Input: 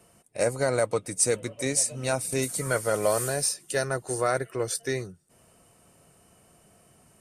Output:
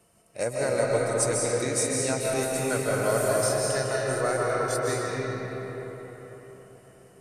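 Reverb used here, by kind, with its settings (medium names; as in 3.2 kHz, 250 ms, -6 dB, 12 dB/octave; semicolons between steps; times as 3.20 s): algorithmic reverb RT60 4.5 s, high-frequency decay 0.55×, pre-delay 110 ms, DRR -4.5 dB; trim -4 dB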